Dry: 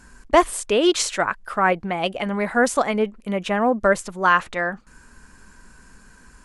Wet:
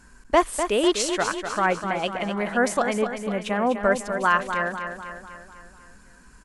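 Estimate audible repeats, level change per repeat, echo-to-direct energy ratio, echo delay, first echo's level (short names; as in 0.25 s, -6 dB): 6, -5.5 dB, -6.5 dB, 0.249 s, -8.0 dB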